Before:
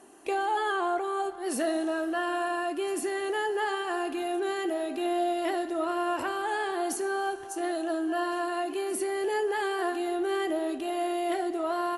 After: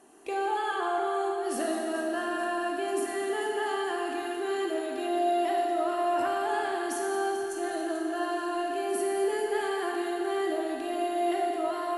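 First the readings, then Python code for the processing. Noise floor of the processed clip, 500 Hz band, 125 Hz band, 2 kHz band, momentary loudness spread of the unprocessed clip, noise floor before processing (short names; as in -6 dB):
-34 dBFS, +0.5 dB, n/a, -1.0 dB, 3 LU, -37 dBFS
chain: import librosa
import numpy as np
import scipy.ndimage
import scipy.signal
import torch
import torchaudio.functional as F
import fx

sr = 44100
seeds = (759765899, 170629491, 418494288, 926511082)

y = fx.echo_heads(x, sr, ms=219, heads='first and second', feedback_pct=61, wet_db=-14.5)
y = fx.rev_schroeder(y, sr, rt60_s=1.8, comb_ms=38, drr_db=1.0)
y = F.gain(torch.from_numpy(y), -4.0).numpy()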